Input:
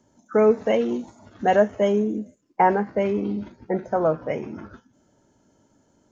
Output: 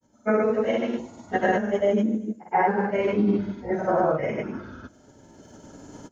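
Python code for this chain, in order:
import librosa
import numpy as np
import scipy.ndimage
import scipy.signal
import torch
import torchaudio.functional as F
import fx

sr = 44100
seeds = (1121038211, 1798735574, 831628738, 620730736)

p1 = fx.phase_scramble(x, sr, seeds[0], window_ms=200)
p2 = fx.recorder_agc(p1, sr, target_db=-9.5, rise_db_per_s=12.0, max_gain_db=30)
p3 = fx.granulator(p2, sr, seeds[1], grain_ms=100.0, per_s=20.0, spray_ms=100.0, spread_st=0)
p4 = p3 + fx.echo_single(p3, sr, ms=237, db=-23.0, dry=0)
p5 = fx.dynamic_eq(p4, sr, hz=1700.0, q=1.7, threshold_db=-43.0, ratio=4.0, max_db=5)
y = p5 * 10.0 ** (-2.5 / 20.0)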